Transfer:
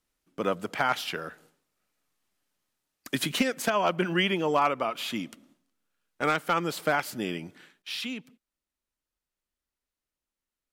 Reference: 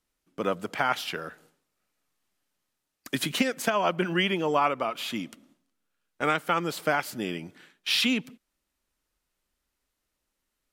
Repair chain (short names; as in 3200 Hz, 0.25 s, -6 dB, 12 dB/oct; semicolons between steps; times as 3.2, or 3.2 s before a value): clip repair -14 dBFS; gain 0 dB, from 7.82 s +10 dB